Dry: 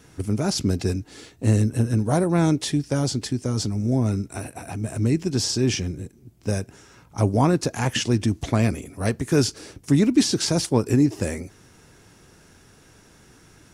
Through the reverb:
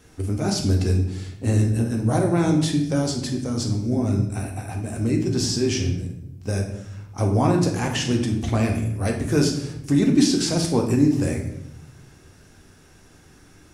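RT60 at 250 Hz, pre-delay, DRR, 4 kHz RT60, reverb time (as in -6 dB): 1.3 s, 3 ms, 1.0 dB, 0.60 s, 0.80 s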